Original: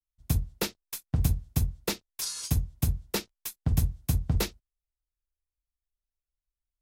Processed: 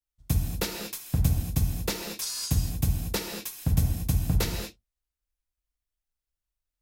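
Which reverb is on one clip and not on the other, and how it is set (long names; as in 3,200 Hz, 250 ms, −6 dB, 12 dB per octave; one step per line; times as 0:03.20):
reverb whose tail is shaped and stops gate 260 ms flat, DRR 2 dB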